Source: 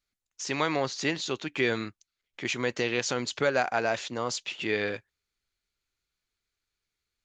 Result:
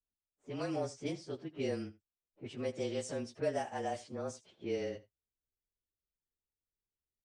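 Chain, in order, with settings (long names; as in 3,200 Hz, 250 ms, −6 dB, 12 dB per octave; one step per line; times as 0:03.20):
partials spread apart or drawn together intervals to 108%
low-pass that shuts in the quiet parts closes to 640 Hz, open at −25.5 dBFS
flat-topped bell 2,000 Hz −9.5 dB 2.6 octaves
on a send: single-tap delay 80 ms −19 dB
on the sum: level −5 dB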